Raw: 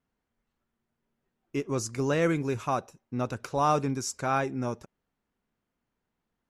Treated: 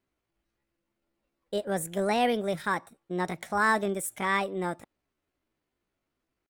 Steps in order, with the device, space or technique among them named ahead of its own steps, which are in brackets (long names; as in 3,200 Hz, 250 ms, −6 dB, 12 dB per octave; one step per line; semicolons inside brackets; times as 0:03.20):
chipmunk voice (pitch shifter +6.5 semitones)